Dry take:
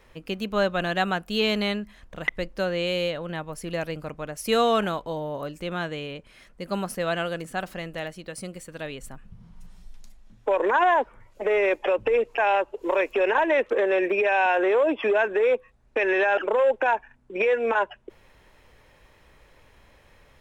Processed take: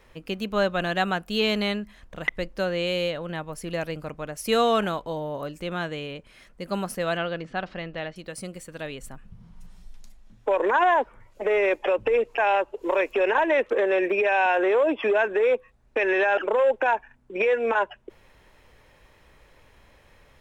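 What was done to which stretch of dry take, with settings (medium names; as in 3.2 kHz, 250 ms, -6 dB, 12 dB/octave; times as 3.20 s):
7.17–8.16 s: low-pass 4.6 kHz 24 dB/octave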